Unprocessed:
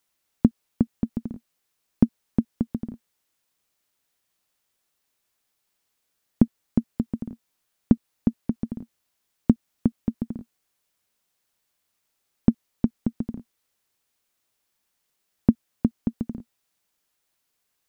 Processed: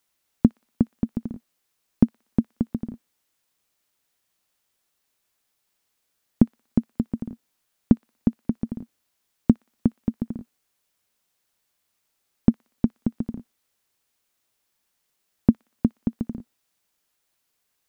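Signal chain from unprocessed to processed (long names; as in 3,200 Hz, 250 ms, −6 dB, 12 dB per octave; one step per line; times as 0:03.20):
delay with a high-pass on its return 60 ms, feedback 52%, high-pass 1,500 Hz, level −18 dB
level +1 dB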